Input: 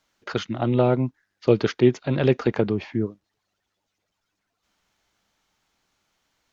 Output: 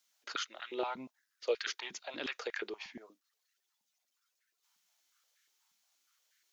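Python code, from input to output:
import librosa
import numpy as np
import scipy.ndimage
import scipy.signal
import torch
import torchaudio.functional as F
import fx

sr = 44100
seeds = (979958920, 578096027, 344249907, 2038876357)

y = np.diff(x, prepend=0.0)
y = fx.filter_held_highpass(y, sr, hz=8.4, low_hz=200.0, high_hz=1700.0)
y = y * librosa.db_to_amplitude(1.0)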